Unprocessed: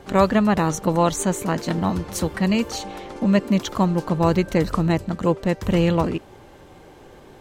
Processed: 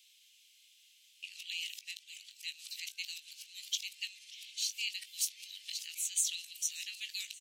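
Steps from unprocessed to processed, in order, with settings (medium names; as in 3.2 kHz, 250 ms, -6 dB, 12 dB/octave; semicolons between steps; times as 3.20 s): reverse the whole clip; steep high-pass 2.6 kHz 48 dB/octave; doubling 19 ms -11 dB; modulated delay 584 ms, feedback 69%, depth 189 cents, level -20 dB; trim -3 dB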